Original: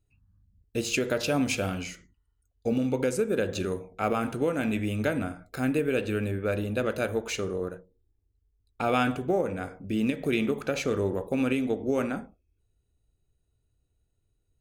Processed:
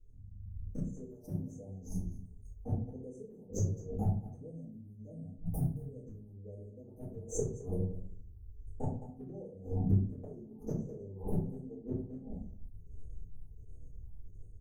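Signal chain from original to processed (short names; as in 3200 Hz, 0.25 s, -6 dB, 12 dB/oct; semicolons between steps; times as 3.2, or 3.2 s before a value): 3.95–6.19 fifteen-band EQ 160 Hz +5 dB, 400 Hz -7 dB, 1000 Hz -10 dB, 4000 Hz -9 dB; phaser stages 6, 1.4 Hz, lowest notch 500–1400 Hz; Chebyshev band-stop 850–6000 Hz, order 5; AGC gain up to 10 dB; flipped gate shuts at -18 dBFS, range -38 dB; echo 0.214 s -22.5 dB; compressor 2.5:1, threshold -41 dBFS, peak gain reduction 11.5 dB; high shelf 5000 Hz -10 dB; doubler 31 ms -11.5 dB; reverb RT60 0.45 s, pre-delay 4 ms, DRR -9.5 dB; attack slew limiter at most 210 dB/s; gain -1.5 dB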